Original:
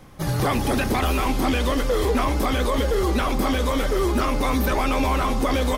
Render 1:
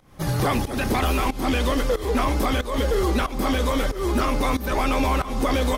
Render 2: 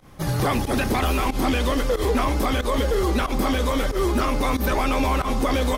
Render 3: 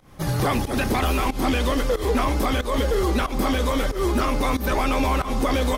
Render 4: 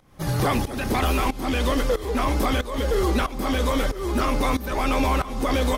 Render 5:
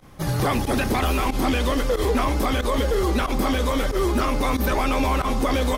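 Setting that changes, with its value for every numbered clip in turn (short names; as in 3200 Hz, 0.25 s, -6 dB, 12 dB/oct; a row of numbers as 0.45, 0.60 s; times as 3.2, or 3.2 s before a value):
pump, release: 282, 94, 173, 439, 63 ms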